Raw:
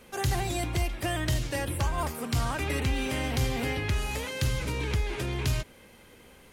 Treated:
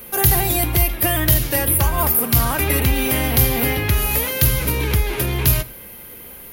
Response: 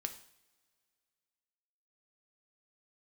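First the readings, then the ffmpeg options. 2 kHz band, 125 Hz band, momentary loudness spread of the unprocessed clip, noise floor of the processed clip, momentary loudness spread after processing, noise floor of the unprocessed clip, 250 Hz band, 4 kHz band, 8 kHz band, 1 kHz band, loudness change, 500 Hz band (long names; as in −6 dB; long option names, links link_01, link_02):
+9.5 dB, +9.5 dB, 3 LU, −38 dBFS, 7 LU, −54 dBFS, +9.5 dB, +9.5 dB, +16.0 dB, +9.5 dB, +13.0 dB, +9.5 dB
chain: -filter_complex "[0:a]aexciter=amount=13.7:drive=4.3:freq=11000,asplit=2[link_01][link_02];[1:a]atrim=start_sample=2205[link_03];[link_02][link_03]afir=irnorm=-1:irlink=0,volume=-4.5dB[link_04];[link_01][link_04]amix=inputs=2:normalize=0,volume=6dB"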